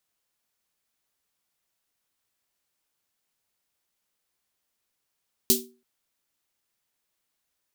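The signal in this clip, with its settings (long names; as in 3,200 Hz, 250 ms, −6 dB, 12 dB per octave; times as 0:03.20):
synth snare length 0.33 s, tones 240 Hz, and 380 Hz, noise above 3,500 Hz, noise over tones 8 dB, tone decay 0.37 s, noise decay 0.22 s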